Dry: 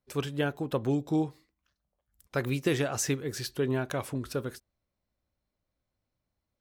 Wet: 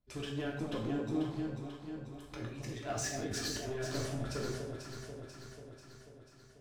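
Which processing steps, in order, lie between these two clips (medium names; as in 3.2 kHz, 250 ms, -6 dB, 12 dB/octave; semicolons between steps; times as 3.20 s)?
low-pass 7.4 kHz 12 dB/octave; bass shelf 150 Hz +8.5 dB; 1.22–3.67 s: compressor with a negative ratio -37 dBFS, ratio -1; peak limiter -23 dBFS, peak gain reduction 8 dB; flange 0.74 Hz, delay 0.1 ms, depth 4.4 ms, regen +53%; hard clipper -33.5 dBFS, distortion -14 dB; echo whose repeats swap between lows and highs 245 ms, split 880 Hz, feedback 77%, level -4.5 dB; gated-style reverb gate 200 ms falling, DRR -1.5 dB; trim -2 dB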